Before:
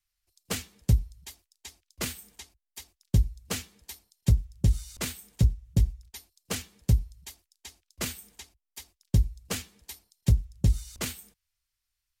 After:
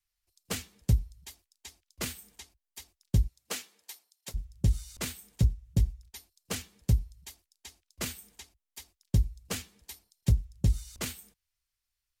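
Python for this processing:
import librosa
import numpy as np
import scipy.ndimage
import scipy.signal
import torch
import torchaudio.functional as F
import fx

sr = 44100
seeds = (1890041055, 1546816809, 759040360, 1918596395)

y = fx.highpass(x, sr, hz=fx.line((3.27, 280.0), (4.34, 740.0)), slope=12, at=(3.27, 4.34), fade=0.02)
y = y * librosa.db_to_amplitude(-2.5)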